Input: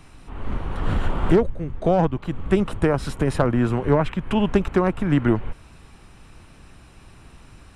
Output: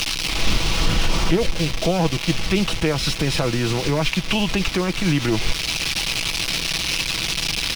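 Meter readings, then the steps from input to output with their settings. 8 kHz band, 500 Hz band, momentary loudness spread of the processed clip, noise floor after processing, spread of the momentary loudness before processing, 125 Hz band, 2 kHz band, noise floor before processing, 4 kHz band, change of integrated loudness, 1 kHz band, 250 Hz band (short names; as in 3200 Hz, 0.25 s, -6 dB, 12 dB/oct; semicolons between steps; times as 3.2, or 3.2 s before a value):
+21.0 dB, -2.5 dB, 1 LU, -27 dBFS, 11 LU, +0.5 dB, +10.0 dB, -49 dBFS, +21.0 dB, +1.0 dB, -0.5 dB, -1.0 dB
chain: delta modulation 64 kbps, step -30 dBFS; in parallel at -4 dB: bit-crush 6-bit; on the sum: limiter -11 dBFS, peak gain reduction 8 dB; band shelf 3600 Hz +12 dB; comb 6.1 ms, depth 39%; vocal rider 0.5 s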